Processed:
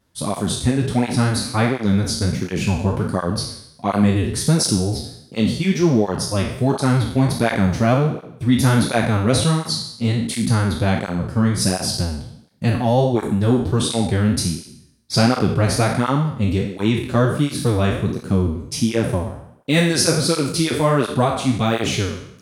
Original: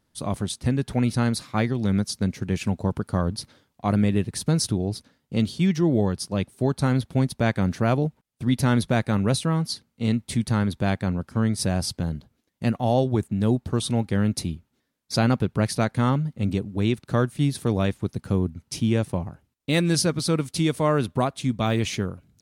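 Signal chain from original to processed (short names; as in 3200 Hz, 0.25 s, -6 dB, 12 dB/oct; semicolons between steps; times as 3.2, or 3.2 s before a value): spectral trails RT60 0.74 s; tape flanging out of phase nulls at 1.4 Hz, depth 6.9 ms; gain +6.5 dB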